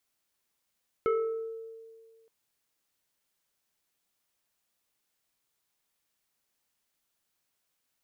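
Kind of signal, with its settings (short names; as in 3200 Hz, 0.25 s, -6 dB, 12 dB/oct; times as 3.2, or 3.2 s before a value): FM tone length 1.22 s, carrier 451 Hz, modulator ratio 1.9, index 0.97, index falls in 1.18 s exponential, decay 1.89 s, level -22 dB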